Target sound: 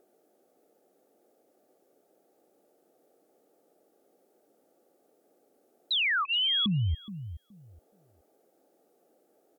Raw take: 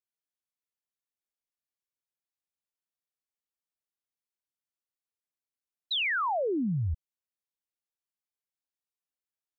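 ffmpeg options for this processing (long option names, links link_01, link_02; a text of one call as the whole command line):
ffmpeg -i in.wav -filter_complex "[0:a]aemphasis=mode=production:type=cd,acrossover=split=300|620[link_01][link_02][link_03];[link_02]acompressor=mode=upward:threshold=-47dB:ratio=2.5[link_04];[link_01][link_04][link_03]amix=inputs=3:normalize=0,alimiter=level_in=8.5dB:limit=-24dB:level=0:latency=1:release=42,volume=-8.5dB,asuperstop=centerf=1000:order=4:qfactor=3.6,asettb=1/sr,asplit=3[link_05][link_06][link_07];[link_05]atrim=end=6.254[link_08];[link_06]atrim=start=6.25:end=6.66,asetpts=PTS-STARTPTS,afade=type=in:duration=0.004:curve=qsin,afade=type=out:start_time=0.406:duration=0.004:curve=qsin,lowpass=frequency=3100:width_type=q:width=0.5098,lowpass=frequency=3100:width_type=q:width=0.6013,lowpass=frequency=3100:width_type=q:width=0.9,lowpass=frequency=3100:width_type=q:width=2.563,afreqshift=-3600[link_09];[link_07]atrim=start=6.656[link_10];[link_08][link_09]acrossfade=duration=0.004:curve1=hsin:curve2=qsin[link_11];[link_11][link_10]acrossfade=duration=0.004:curve1=qsin:curve2=hsin,asplit=2[link_12][link_13];[link_13]adelay=422,lowpass=frequency=920:poles=1,volume=-12dB,asplit=2[link_14][link_15];[link_15]adelay=422,lowpass=frequency=920:poles=1,volume=0.2,asplit=2[link_16][link_17];[link_17]adelay=422,lowpass=frequency=920:poles=1,volume=0.2[link_18];[link_12][link_14][link_16][link_18]amix=inputs=4:normalize=0,volume=9dB" out.wav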